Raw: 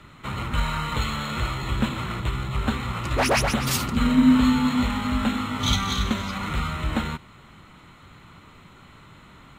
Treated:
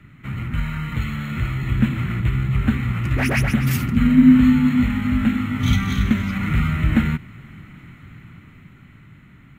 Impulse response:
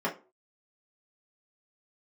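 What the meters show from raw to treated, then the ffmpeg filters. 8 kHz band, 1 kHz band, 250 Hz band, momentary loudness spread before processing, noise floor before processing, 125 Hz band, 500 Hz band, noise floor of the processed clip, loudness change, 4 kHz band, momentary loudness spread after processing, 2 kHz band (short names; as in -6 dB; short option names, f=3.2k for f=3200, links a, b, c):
-6.5 dB, -5.5 dB, +6.0 dB, 10 LU, -49 dBFS, +8.0 dB, -4.5 dB, -47 dBFS, +4.5 dB, -6.0 dB, 13 LU, +2.5 dB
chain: -af "equalizer=f=125:t=o:w=1:g=7,equalizer=f=250:t=o:w=1:g=4,equalizer=f=500:t=o:w=1:g=-8,equalizer=f=1k:t=o:w=1:g=-11,equalizer=f=2k:t=o:w=1:g=7,equalizer=f=4k:t=o:w=1:g=-12,equalizer=f=8k:t=o:w=1:g=-8,dynaudnorm=f=400:g=9:m=11.5dB,volume=-1dB"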